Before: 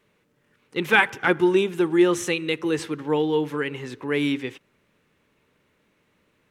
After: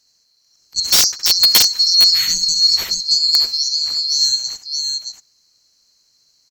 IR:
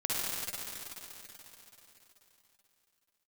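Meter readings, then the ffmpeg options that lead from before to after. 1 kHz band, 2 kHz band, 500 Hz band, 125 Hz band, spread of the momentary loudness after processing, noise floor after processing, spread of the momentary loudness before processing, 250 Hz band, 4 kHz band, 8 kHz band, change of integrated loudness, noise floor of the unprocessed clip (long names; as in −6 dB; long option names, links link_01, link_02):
−7.5 dB, −7.0 dB, below −15 dB, below −10 dB, 12 LU, −61 dBFS, 11 LU, below −20 dB, +23.5 dB, +22.0 dB, +10.0 dB, −68 dBFS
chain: -af "afftfilt=real='real(if(lt(b,736),b+184*(1-2*mod(floor(b/184),2)),b),0)':imag='imag(if(lt(b,736),b+184*(1-2*mod(floor(b/184),2)),b),0)':win_size=2048:overlap=0.75,aecho=1:1:67|625:0.501|0.596,aeval=exprs='(mod(2.66*val(0)+1,2)-1)/2.66':channel_layout=same,volume=5.5dB"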